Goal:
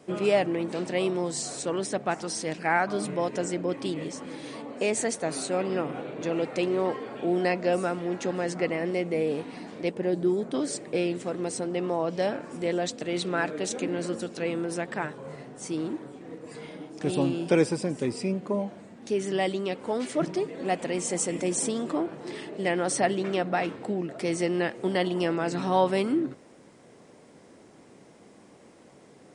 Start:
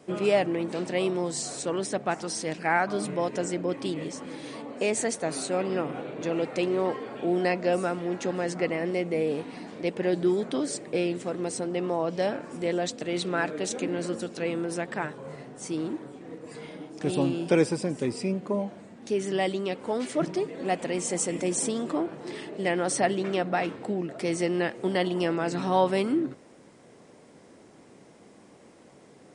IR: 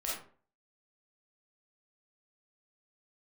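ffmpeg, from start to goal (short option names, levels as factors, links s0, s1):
-filter_complex "[0:a]asettb=1/sr,asplit=3[s0][s1][s2];[s0]atrim=end=9.914[s3];[s1]atrim=start=9.91:end=10.54,asetpts=PTS-STARTPTS,afade=t=in:d=0.004:c=qsin,afade=t=out:st=0.626:d=0.004:c=qsin,equalizer=f=2900:t=o:w=3:g=-7.5[s4];[s2]atrim=start=10.536[s5];[s3][s4]acrossfade=d=0.004:c1=hsin:c2=qsin[s6];[s6][s5]acrossfade=d=0.004:c1=qsin:c2=hsin"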